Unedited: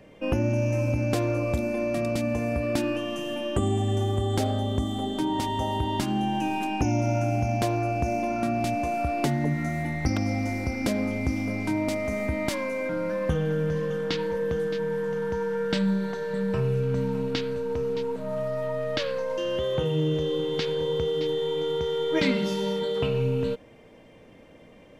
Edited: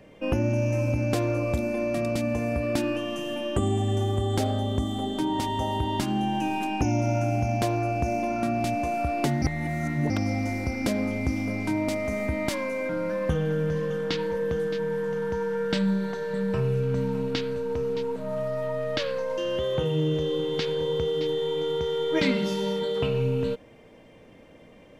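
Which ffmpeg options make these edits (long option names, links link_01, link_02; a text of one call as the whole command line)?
ffmpeg -i in.wav -filter_complex "[0:a]asplit=3[link_01][link_02][link_03];[link_01]atrim=end=9.422[link_04];[link_02]atrim=start=9.418:end=10.102,asetpts=PTS-STARTPTS,areverse[link_05];[link_03]atrim=start=10.098[link_06];[link_04][link_05]acrossfade=duration=0.004:curve1=hsin:curve2=hsin[link_07];[link_07][link_06]acrossfade=duration=0.004:curve1=hsin:curve2=hsin" out.wav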